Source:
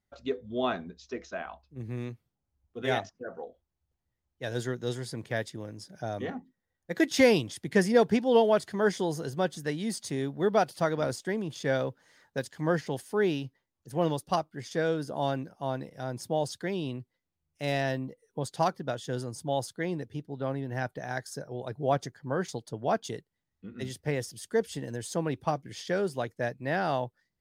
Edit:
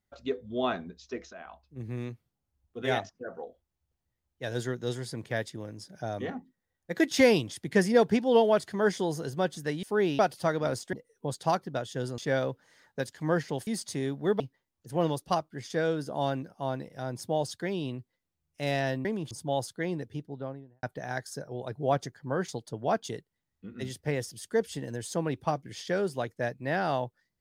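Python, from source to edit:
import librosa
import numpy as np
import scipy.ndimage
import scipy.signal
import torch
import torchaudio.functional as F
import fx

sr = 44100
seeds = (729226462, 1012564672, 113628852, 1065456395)

y = fx.studio_fade_out(x, sr, start_s=20.15, length_s=0.68)
y = fx.edit(y, sr, fx.fade_in_from(start_s=1.33, length_s=0.55, curve='qsin', floor_db=-12.5),
    fx.swap(start_s=9.83, length_s=0.73, other_s=13.05, other_length_s=0.36),
    fx.swap(start_s=11.3, length_s=0.26, other_s=18.06, other_length_s=1.25), tone=tone)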